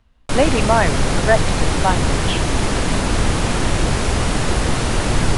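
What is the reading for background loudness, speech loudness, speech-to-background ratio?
−19.5 LKFS, −20.5 LKFS, −1.0 dB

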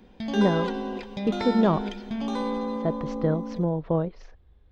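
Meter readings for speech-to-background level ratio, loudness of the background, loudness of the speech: 4.0 dB, −31.0 LKFS, −27.0 LKFS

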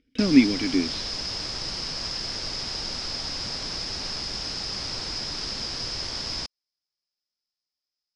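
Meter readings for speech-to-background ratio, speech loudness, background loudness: 8.0 dB, −21.5 LKFS, −29.5 LKFS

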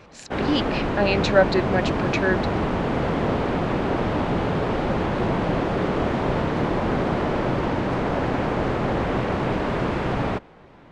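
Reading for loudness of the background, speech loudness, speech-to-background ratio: −24.0 LKFS, −24.0 LKFS, 0.0 dB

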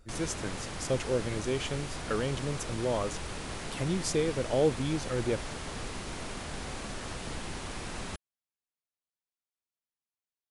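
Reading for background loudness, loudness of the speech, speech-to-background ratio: −39.0 LKFS, −32.5 LKFS, 6.5 dB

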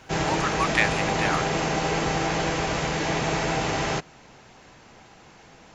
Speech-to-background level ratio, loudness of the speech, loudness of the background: −2.0 dB, −27.5 LKFS, −25.5 LKFS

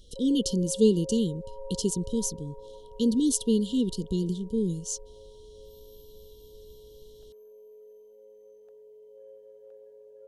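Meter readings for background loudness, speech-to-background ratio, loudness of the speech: −47.0 LKFS, 20.0 dB, −27.0 LKFS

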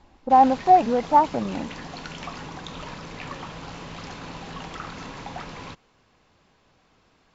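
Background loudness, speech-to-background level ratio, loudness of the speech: −37.5 LKFS, 18.0 dB, −19.5 LKFS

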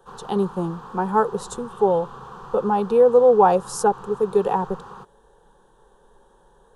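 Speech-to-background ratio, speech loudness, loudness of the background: 19.5 dB, −20.5 LKFS, −40.0 LKFS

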